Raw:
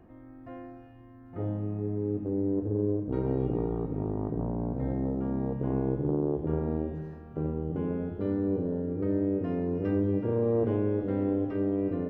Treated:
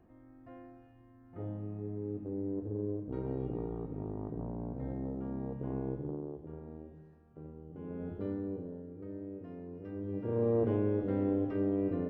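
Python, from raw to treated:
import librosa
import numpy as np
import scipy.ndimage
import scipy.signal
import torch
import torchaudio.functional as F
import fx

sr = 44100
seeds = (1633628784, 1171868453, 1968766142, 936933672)

y = fx.gain(x, sr, db=fx.line((5.92, -8.0), (6.51, -17.0), (7.7, -17.0), (8.11, -5.0), (8.92, -15.5), (9.91, -15.5), (10.42, -3.0)))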